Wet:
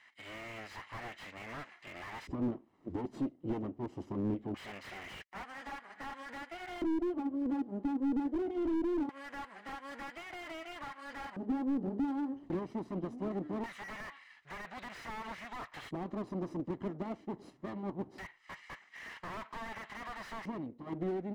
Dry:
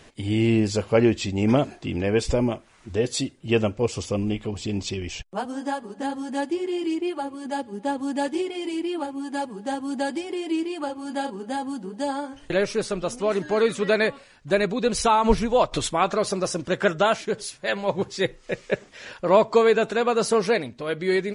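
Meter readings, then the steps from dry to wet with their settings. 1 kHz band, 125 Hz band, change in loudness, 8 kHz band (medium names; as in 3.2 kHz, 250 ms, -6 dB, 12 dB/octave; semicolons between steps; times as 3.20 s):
-17.0 dB, -15.5 dB, -15.0 dB, under -25 dB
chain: comb filter that takes the minimum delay 1 ms; recorder AGC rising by 19 dB/s; LFO band-pass square 0.22 Hz 310–1900 Hz; slew-rate limiter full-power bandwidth 15 Hz; trim -3.5 dB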